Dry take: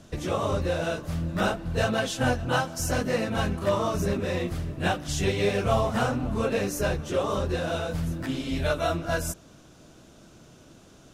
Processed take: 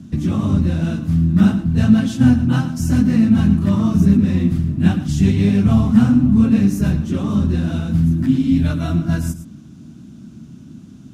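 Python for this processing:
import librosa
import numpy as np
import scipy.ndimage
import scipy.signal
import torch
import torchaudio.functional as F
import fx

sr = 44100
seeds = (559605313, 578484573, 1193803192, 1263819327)

p1 = scipy.signal.sosfilt(scipy.signal.butter(2, 72.0, 'highpass', fs=sr, output='sos'), x)
p2 = fx.low_shelf_res(p1, sr, hz=340.0, db=13.5, q=3.0)
p3 = p2 + fx.echo_single(p2, sr, ms=111, db=-12.5, dry=0)
y = F.gain(torch.from_numpy(p3), -1.5).numpy()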